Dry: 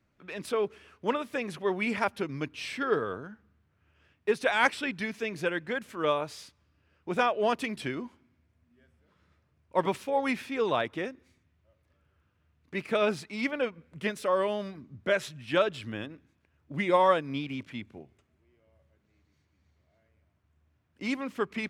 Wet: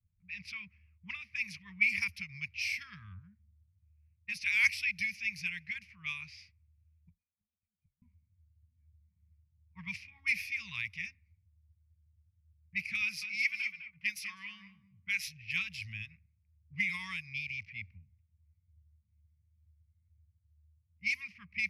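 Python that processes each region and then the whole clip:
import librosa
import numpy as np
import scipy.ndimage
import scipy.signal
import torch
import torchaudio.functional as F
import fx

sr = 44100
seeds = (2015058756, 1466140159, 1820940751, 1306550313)

y = fx.chain(x, sr, fx.tone_stack(knobs='6-0-2'),
    fx.gate_flip(shuts_db=-46.0, range_db=-26), at=(7.09, 8.02))
y = fx.chain(y, sr, fx.highpass(hz=390.0, slope=6),
    fx.echo_feedback(ms=205, feedback_pct=23, wet_db=-9), at=(13.01, 15.23))
y = scipy.signal.sosfilt(scipy.signal.cheby1(3, 1.0, [120.0, 2200.0], 'bandstop', fs=sr, output='sos'), y)
y = fx.env_lowpass(y, sr, base_hz=390.0, full_db=-37.0)
y = fx.ripple_eq(y, sr, per_octave=0.84, db=14)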